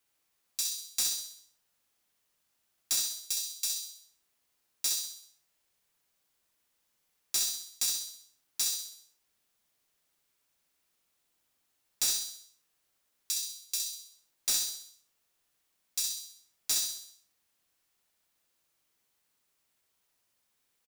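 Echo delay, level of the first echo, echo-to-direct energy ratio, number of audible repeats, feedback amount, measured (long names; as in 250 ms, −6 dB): 64 ms, −5.0 dB, −4.0 dB, 5, 50%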